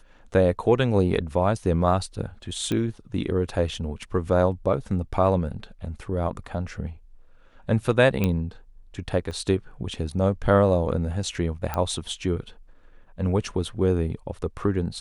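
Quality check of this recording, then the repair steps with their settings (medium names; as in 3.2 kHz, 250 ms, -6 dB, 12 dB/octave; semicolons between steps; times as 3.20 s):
2.72 s: pop -14 dBFS
8.24 s: pop -11 dBFS
9.31 s: dropout 2.2 ms
11.74 s: pop -13 dBFS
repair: de-click; interpolate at 9.31 s, 2.2 ms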